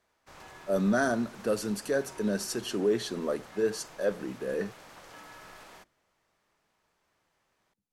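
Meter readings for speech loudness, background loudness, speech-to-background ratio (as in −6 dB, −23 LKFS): −30.5 LKFS, −50.0 LKFS, 19.5 dB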